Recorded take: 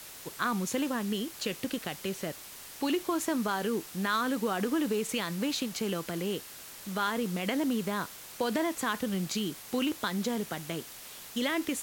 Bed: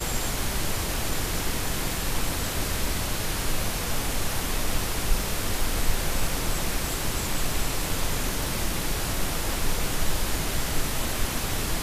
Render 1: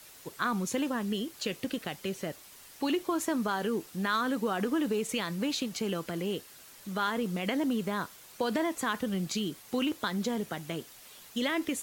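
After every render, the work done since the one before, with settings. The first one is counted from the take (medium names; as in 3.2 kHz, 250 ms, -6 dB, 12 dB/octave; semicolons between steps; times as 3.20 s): noise reduction 7 dB, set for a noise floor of -47 dBFS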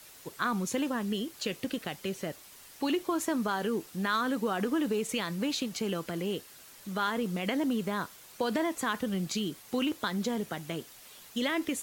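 no audible change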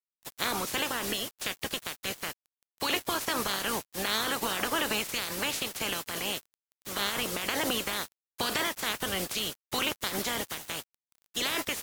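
spectral peaks clipped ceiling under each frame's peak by 27 dB; small samples zeroed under -41.5 dBFS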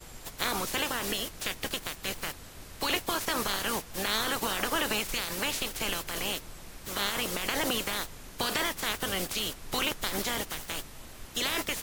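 add bed -19 dB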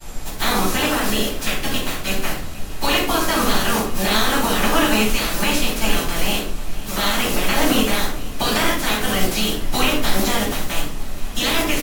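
feedback delay 477 ms, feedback 57%, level -19 dB; simulated room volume 520 m³, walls furnished, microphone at 8.4 m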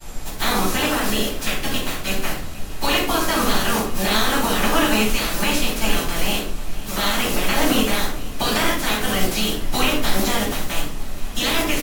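trim -1 dB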